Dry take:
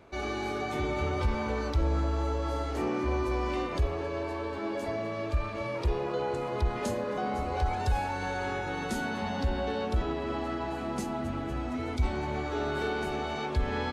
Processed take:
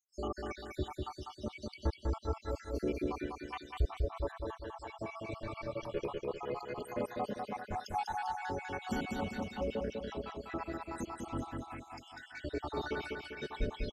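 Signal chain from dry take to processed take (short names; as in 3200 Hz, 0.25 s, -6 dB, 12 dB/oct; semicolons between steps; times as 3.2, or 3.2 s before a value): random spectral dropouts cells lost 84%; on a send: feedback echo 0.198 s, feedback 49%, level -3.5 dB; on the sum: gain -2 dB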